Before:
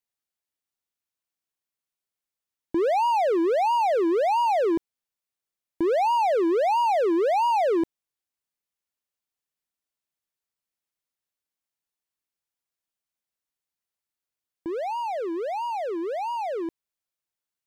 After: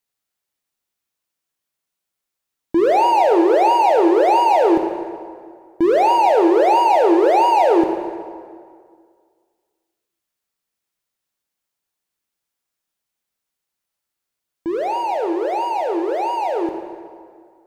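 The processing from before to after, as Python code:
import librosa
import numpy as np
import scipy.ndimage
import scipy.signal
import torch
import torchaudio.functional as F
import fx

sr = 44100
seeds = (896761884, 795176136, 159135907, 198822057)

y = fx.rev_plate(x, sr, seeds[0], rt60_s=2.0, hf_ratio=0.7, predelay_ms=0, drr_db=4.0)
y = y * librosa.db_to_amplitude(6.5)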